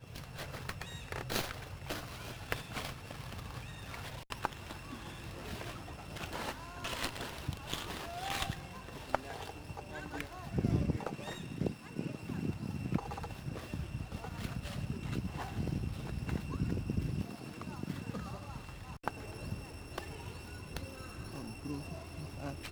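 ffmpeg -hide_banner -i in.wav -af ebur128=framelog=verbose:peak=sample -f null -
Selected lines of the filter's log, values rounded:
Integrated loudness:
  I:         -40.9 LUFS
  Threshold: -50.9 LUFS
Loudness range:
  LRA:         5.6 LU
  Threshold: -60.7 LUFS
  LRA low:   -44.1 LUFS
  LRA high:  -38.5 LUFS
Sample peak:
  Peak:      -12.5 dBFS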